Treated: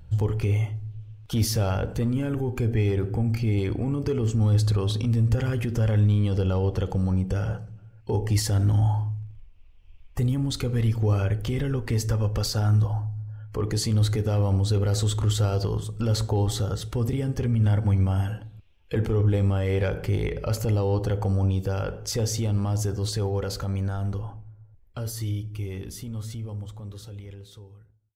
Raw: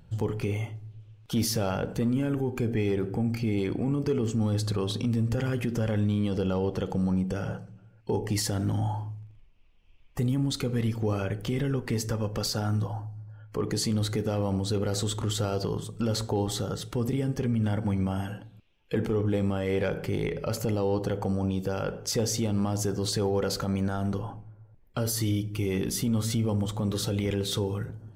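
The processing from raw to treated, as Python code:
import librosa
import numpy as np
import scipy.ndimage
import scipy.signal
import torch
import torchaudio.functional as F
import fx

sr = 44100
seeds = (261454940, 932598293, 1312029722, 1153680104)

y = fx.fade_out_tail(x, sr, length_s=6.91)
y = fx.low_shelf_res(y, sr, hz=120.0, db=8.5, q=1.5)
y = y * 10.0 ** (1.0 / 20.0)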